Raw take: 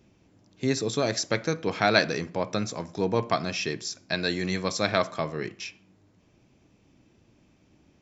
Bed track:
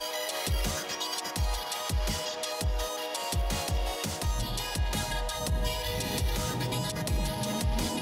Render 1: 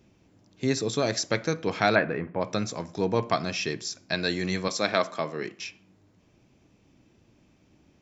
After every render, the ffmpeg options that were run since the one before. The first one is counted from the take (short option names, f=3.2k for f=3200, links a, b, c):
-filter_complex "[0:a]asplit=3[a][b][c];[a]afade=t=out:st=1.94:d=0.02[d];[b]lowpass=f=2.2k:w=0.5412,lowpass=f=2.2k:w=1.3066,afade=t=in:st=1.94:d=0.02,afade=t=out:st=2.4:d=0.02[e];[c]afade=t=in:st=2.4:d=0.02[f];[d][e][f]amix=inputs=3:normalize=0,asettb=1/sr,asplit=3[g][h][i];[g]atrim=end=4.684[j];[h]atrim=start=4.68:end=5.6,asetpts=PTS-STARTPTS,afade=t=in:d=0.004:c=qsin,afade=t=out:st=0.916:d=0.004:c=qsin,highpass=190[k];[i]atrim=start=5.596[l];[j][k]acrossfade=d=0.004:c1=hsin:c2=qsin[m];[m][l]acrossfade=d=0.004:c1=qsin:c2=hsin"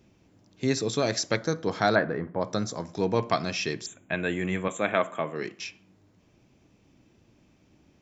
-filter_complex "[0:a]asettb=1/sr,asplit=3[a][b][c];[a]atrim=end=1.364[d];[b]atrim=start=1.36:end=2.85,asetpts=PTS-STARTPTS,afade=t=in:d=0.004:c=qsin,afade=t=out:st=1.486:d=0.004:c=qsin,equalizer=f=2.5k:w=3.5:g=-13.5[e];[c]atrim=start=2.846[f];[d][e]acrossfade=d=0.004:c1=hsin:c2=qsin[g];[g][f]acrossfade=d=0.004:c1=qsin:c2=hsin,asettb=1/sr,asplit=3[h][i][j];[h]atrim=end=3.864[k];[i]atrim=start=3.86:end=5.36,asetpts=PTS-STARTPTS,afade=t=in:d=0.004:c=qsin,afade=t=out:st=1.496:d=0.004:c=qsin,asuperstop=centerf=4900:order=8:qfactor=1.4[l];[j]atrim=start=5.356[m];[k][l]acrossfade=d=0.004:c1=hsin:c2=qsin[n];[n][m]acrossfade=d=0.004:c1=qsin:c2=hsin"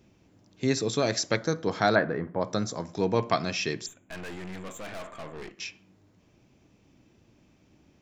-filter_complex "[0:a]asettb=1/sr,asplit=3[a][b][c];[a]atrim=end=3.884[d];[b]atrim=start=3.88:end=5.58,asetpts=PTS-STARTPTS,afade=t=in:d=0.004:c=qsin,afade=t=out:st=1.696:d=0.004:c=qsin,aeval=exprs='(tanh(70.8*val(0)+0.7)-tanh(0.7))/70.8':c=same[e];[c]atrim=start=5.576[f];[d][e]acrossfade=d=0.004:c1=hsin:c2=qsin[g];[g][f]acrossfade=d=0.004:c1=qsin:c2=hsin"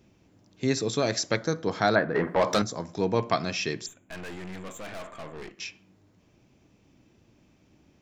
-filter_complex "[0:a]asettb=1/sr,asplit=3[a][b][c];[a]atrim=end=2.154[d];[b]atrim=start=2.15:end=2.62,asetpts=PTS-STARTPTS,afade=t=in:d=0.004:c=qsin,afade=t=out:st=0.466:d=0.004:c=qsin,asplit=2[e][f];[f]highpass=f=720:p=1,volume=22dB,asoftclip=type=tanh:threshold=-12.5dB[g];[e][g]amix=inputs=2:normalize=0,lowpass=f=5k:p=1,volume=-6dB[h];[c]atrim=start=2.616[i];[d][h]acrossfade=d=0.004:c1=hsin:c2=qsin[j];[j][i]acrossfade=d=0.004:c1=qsin:c2=hsin"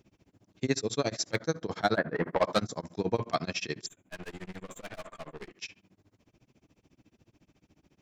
-af "asoftclip=type=hard:threshold=-12dB,tremolo=f=14:d=0.98"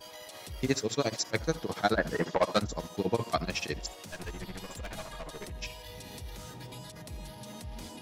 -filter_complex "[1:a]volume=-13.5dB[a];[0:a][a]amix=inputs=2:normalize=0"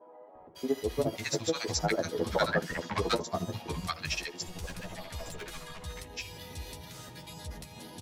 -filter_complex "[0:a]asplit=2[a][b];[b]adelay=12,volume=-6dB[c];[a][c]amix=inputs=2:normalize=0,acrossover=split=230|1000[d][e][f];[d]adelay=350[g];[f]adelay=550[h];[g][e][h]amix=inputs=3:normalize=0"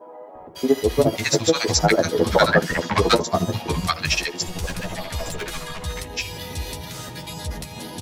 -af "volume=12dB,alimiter=limit=-1dB:level=0:latency=1"